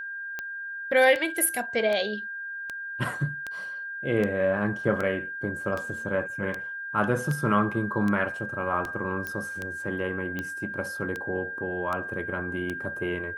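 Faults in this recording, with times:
tick 78 rpm -18 dBFS
whine 1.6 kHz -33 dBFS
9.27 s: pop -18 dBFS

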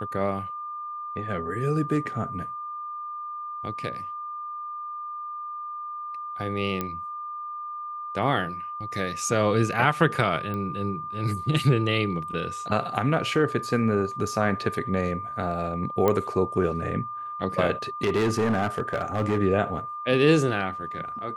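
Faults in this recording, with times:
whine 1.2 kHz -32 dBFS
6.81 s: pop -14 dBFS
10.54 s: pop -21 dBFS
16.08 s: pop -10 dBFS
18.03–19.39 s: clipped -19 dBFS

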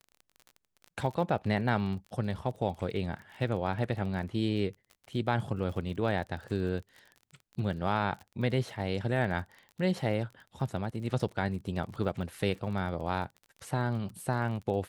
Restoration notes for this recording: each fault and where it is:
crackle 31 per s -40 dBFS

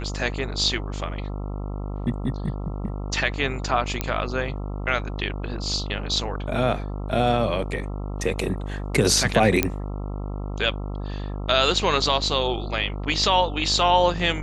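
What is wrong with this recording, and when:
buzz 50 Hz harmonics 27 -30 dBFS
4.01 s: pop -8 dBFS
9.63 s: pop -3 dBFS

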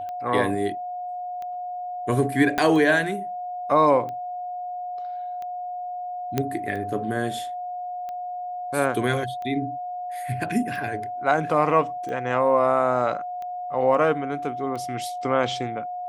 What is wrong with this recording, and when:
tick 45 rpm -24 dBFS
whine 720 Hz -29 dBFS
2.58 s: pop -9 dBFS
6.38 s: pop -9 dBFS

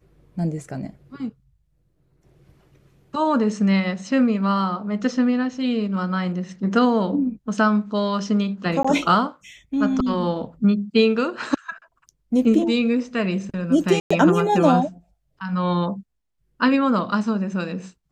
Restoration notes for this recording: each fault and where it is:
8.83–8.85 s: dropout 15 ms
14.00–14.11 s: dropout 105 ms

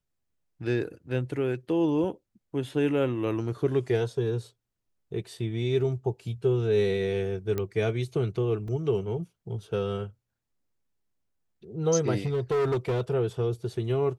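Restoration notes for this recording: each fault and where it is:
7.58 s: pop -17 dBFS
8.68 s: dropout 2.9 ms
12.25–13.01 s: clipped -22.5 dBFS

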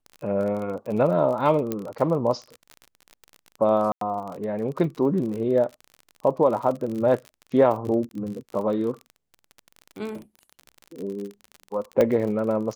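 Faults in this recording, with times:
crackle 37 per s -31 dBFS
1.72 s: pop -13 dBFS
3.92–4.01 s: dropout 93 ms
8.09–8.11 s: dropout 21 ms
12.01 s: pop -9 dBFS

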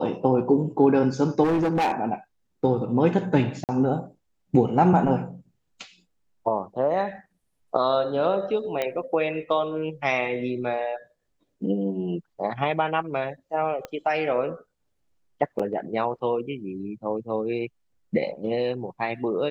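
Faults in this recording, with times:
1.43–1.92 s: clipped -19 dBFS
3.64–3.69 s: dropout 48 ms
8.82 s: pop -13 dBFS
13.85 s: pop -19 dBFS
15.59–15.60 s: dropout 5.2 ms

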